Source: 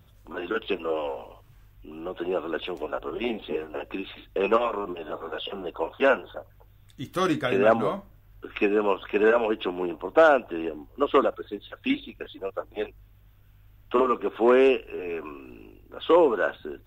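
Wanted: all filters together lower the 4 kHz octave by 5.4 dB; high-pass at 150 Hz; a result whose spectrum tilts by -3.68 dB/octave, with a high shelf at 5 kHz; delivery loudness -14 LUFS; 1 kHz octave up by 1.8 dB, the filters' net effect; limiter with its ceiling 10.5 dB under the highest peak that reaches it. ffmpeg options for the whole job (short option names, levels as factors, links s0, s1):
-af "highpass=150,equalizer=f=1000:t=o:g=3,equalizer=f=4000:t=o:g=-5,highshelf=f=5000:g=-8,volume=5.62,alimiter=limit=0.891:level=0:latency=1"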